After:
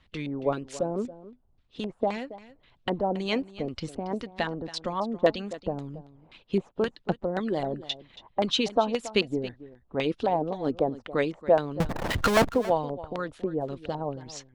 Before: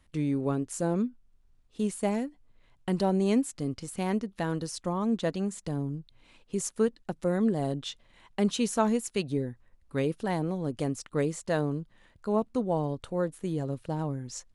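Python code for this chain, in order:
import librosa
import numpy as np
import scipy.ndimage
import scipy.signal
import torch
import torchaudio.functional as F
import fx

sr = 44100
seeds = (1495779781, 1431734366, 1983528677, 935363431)

p1 = fx.filter_lfo_lowpass(x, sr, shape='square', hz=1.9, low_hz=750.0, high_hz=3700.0, q=1.8)
p2 = fx.power_curve(p1, sr, exponent=0.35, at=(11.8, 12.49))
p3 = fx.hpss(p2, sr, part='harmonic', gain_db=-13)
p4 = p3 + fx.echo_single(p3, sr, ms=277, db=-16.5, dry=0)
y = p4 * librosa.db_to_amplitude(6.5)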